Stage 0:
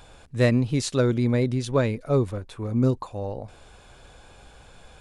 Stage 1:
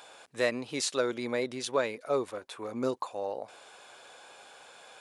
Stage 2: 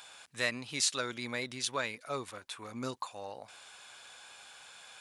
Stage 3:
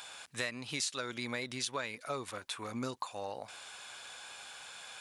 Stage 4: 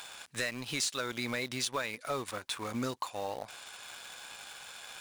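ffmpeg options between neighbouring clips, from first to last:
-filter_complex "[0:a]highpass=520,asplit=2[a][b];[b]alimiter=limit=-22.5dB:level=0:latency=1:release=462,volume=2dB[c];[a][c]amix=inputs=2:normalize=0,volume=-5.5dB"
-af "equalizer=f=450:w=0.61:g=-14.5,volume=3dB"
-af "acompressor=threshold=-38dB:ratio=4,volume=4dB"
-filter_complex "[0:a]asplit=2[a][b];[b]acrusher=bits=6:mix=0:aa=0.000001,volume=-6dB[c];[a][c]amix=inputs=2:normalize=0,volume=25dB,asoftclip=hard,volume=-25dB"

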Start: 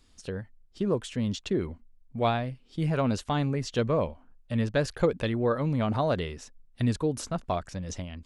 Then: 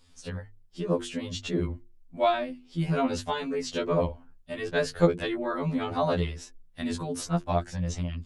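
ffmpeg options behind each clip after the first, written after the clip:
-af "bandreject=f=50:t=h:w=6,bandreject=f=100:t=h:w=6,bandreject=f=150:t=h:w=6,bandreject=f=200:t=h:w=6,bandreject=f=250:t=h:w=6,bandreject=f=300:t=h:w=6,bandreject=f=350:t=h:w=6,bandreject=f=400:t=h:w=6,bandreject=f=450:t=h:w=6,afftfilt=real='re*2*eq(mod(b,4),0)':imag='im*2*eq(mod(b,4),0)':win_size=2048:overlap=0.75,volume=4dB"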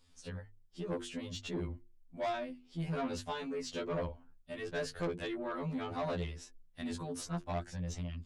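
-af "asoftclip=type=tanh:threshold=-23.5dB,volume=-7dB"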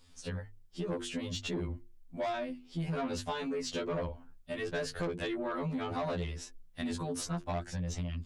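-af "acompressor=threshold=-38dB:ratio=6,volume=6dB"

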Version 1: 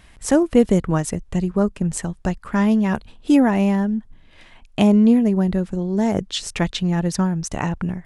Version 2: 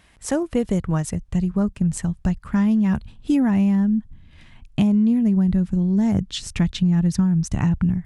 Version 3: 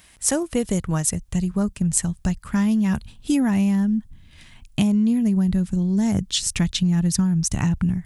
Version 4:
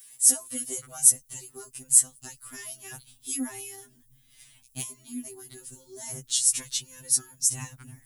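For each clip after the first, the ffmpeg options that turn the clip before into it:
-af "highpass=f=100:p=1,asubboost=boost=11.5:cutoff=150,acompressor=threshold=-12dB:ratio=5,volume=-3.5dB"
-af "crystalizer=i=3.5:c=0,volume=-1.5dB"
-af "aemphasis=mode=production:type=75kf,crystalizer=i=1.5:c=0,afftfilt=real='re*2.45*eq(mod(b,6),0)':imag='im*2.45*eq(mod(b,6),0)':win_size=2048:overlap=0.75,volume=-13dB"

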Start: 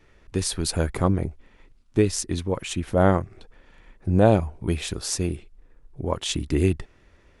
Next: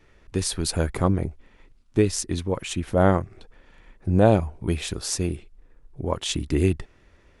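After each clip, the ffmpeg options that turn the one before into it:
-af anull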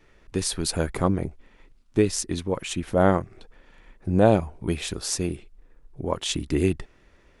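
-af "equalizer=f=83:w=1.4:g=-5"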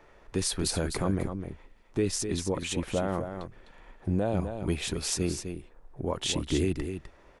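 -filter_complex "[0:a]acrossover=split=680|900[a][b][c];[b]acompressor=mode=upward:threshold=-47dB:ratio=2.5[d];[a][d][c]amix=inputs=3:normalize=0,alimiter=limit=-16dB:level=0:latency=1:release=32,aecho=1:1:254:0.398,volume=-2dB"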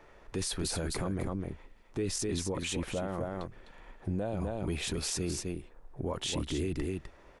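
-af "alimiter=level_in=1dB:limit=-24dB:level=0:latency=1:release=13,volume=-1dB"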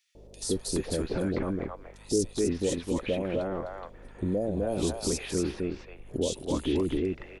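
-filter_complex "[0:a]equalizer=f=125:t=o:w=1:g=-4,equalizer=f=250:t=o:w=1:g=5,equalizer=f=500:t=o:w=1:g=8,aeval=exprs='val(0)+0.00224*(sin(2*PI*50*n/s)+sin(2*PI*2*50*n/s)/2+sin(2*PI*3*50*n/s)/3+sin(2*PI*4*50*n/s)/4+sin(2*PI*5*50*n/s)/5)':c=same,acrossover=split=680|3300[a][b][c];[a]adelay=150[d];[b]adelay=420[e];[d][e][c]amix=inputs=3:normalize=0,volume=1.5dB"

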